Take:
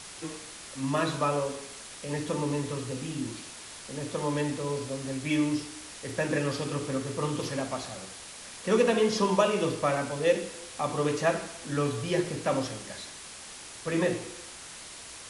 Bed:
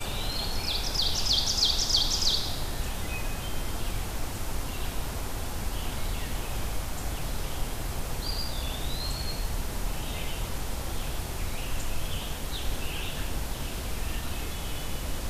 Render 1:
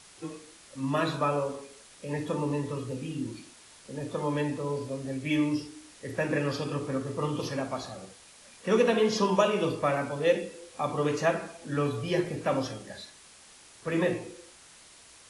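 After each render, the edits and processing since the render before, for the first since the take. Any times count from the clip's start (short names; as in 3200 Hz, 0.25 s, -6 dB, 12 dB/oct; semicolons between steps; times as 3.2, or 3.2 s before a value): noise print and reduce 9 dB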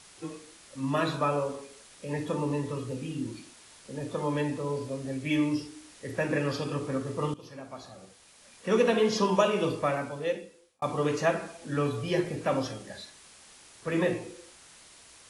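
7.34–8.88 fade in, from -17.5 dB; 9.76–10.82 fade out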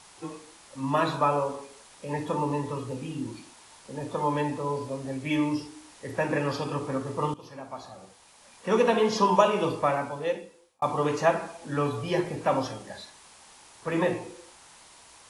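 bell 900 Hz +9 dB 0.69 oct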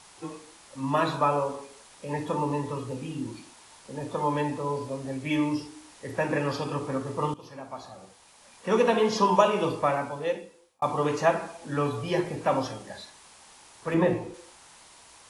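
13.94–14.34 tilt -2 dB/oct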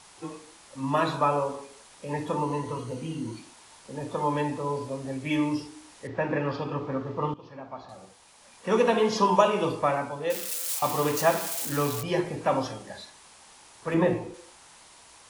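2.43–3.38 ripple EQ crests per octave 1.9, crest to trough 7 dB; 6.07–7.89 air absorption 200 m; 10.3–12.03 switching spikes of -22 dBFS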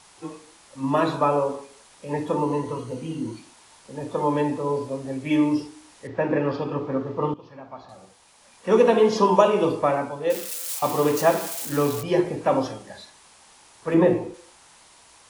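dynamic EQ 370 Hz, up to +7 dB, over -37 dBFS, Q 0.73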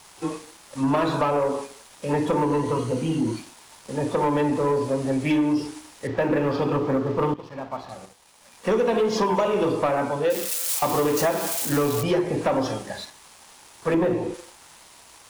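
compressor 6:1, threshold -24 dBFS, peak gain reduction 13 dB; sample leveller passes 2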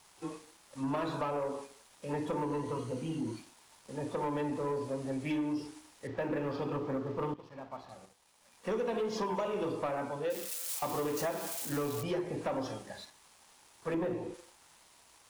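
gain -12 dB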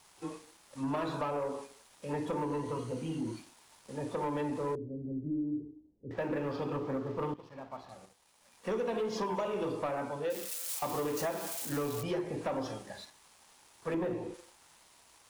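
4.75–6.11 inverse Chebyshev low-pass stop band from 1700 Hz, stop band 70 dB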